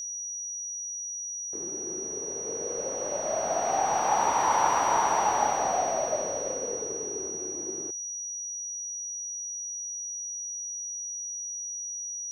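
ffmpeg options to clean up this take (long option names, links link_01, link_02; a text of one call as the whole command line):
ffmpeg -i in.wav -af "bandreject=frequency=5800:width=30" out.wav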